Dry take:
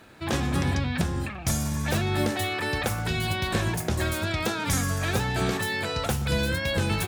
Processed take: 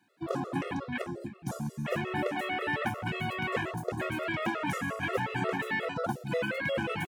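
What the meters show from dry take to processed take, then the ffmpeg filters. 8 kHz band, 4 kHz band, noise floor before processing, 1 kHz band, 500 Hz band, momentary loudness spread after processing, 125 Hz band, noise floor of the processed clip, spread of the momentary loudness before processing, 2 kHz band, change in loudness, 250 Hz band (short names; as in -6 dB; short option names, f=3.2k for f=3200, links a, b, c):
-18.0 dB, -11.0 dB, -36 dBFS, -2.5 dB, -2.5 dB, 5 LU, -11.5 dB, -51 dBFS, 2 LU, -3.5 dB, -6.0 dB, -5.5 dB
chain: -filter_complex "[0:a]highpass=f=130:w=0.5412,highpass=f=130:w=1.3066,asplit=2[a][b];[b]adelay=163.3,volume=-20dB,highshelf=f=4k:g=-3.67[c];[a][c]amix=inputs=2:normalize=0,acrossover=split=320[d][e];[d]acompressor=threshold=-34dB:ratio=6[f];[f][e]amix=inputs=2:normalize=0,asplit=2[g][h];[h]adelay=26,volume=-13dB[i];[g][i]amix=inputs=2:normalize=0,afwtdn=0.0282,afftfilt=real='re*gt(sin(2*PI*5.6*pts/sr)*(1-2*mod(floor(b*sr/1024/360),2)),0)':imag='im*gt(sin(2*PI*5.6*pts/sr)*(1-2*mod(floor(b*sr/1024/360),2)),0)':win_size=1024:overlap=0.75,volume=1.5dB"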